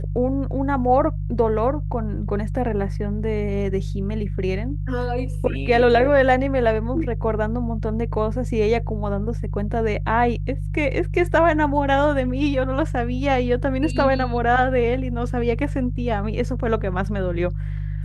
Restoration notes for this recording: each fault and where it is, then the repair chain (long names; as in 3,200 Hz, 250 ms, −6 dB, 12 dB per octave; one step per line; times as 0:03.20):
mains hum 50 Hz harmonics 3 −26 dBFS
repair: hum removal 50 Hz, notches 3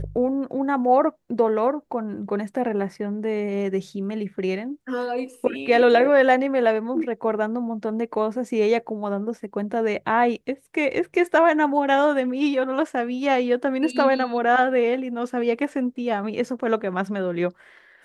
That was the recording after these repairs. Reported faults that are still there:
none of them is left